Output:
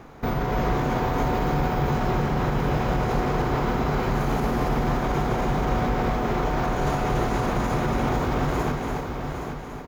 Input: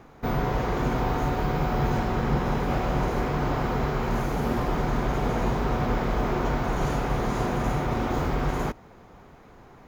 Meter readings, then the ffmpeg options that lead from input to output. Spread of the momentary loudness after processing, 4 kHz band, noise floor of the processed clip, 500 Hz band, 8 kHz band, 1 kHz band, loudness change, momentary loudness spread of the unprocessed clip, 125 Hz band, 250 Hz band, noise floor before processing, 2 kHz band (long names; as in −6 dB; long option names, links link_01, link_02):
3 LU, +2.5 dB, −34 dBFS, +2.5 dB, +2.5 dB, +3.0 dB, +2.0 dB, 2 LU, +2.0 dB, +2.0 dB, −50 dBFS, +2.5 dB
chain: -filter_complex "[0:a]asplit=2[link_01][link_02];[link_02]aecho=0:1:818|1636|2454:0.282|0.0761|0.0205[link_03];[link_01][link_03]amix=inputs=2:normalize=0,alimiter=limit=-22dB:level=0:latency=1,asplit=2[link_04][link_05];[link_05]aecho=0:1:286:0.631[link_06];[link_04][link_06]amix=inputs=2:normalize=0,volume=5dB"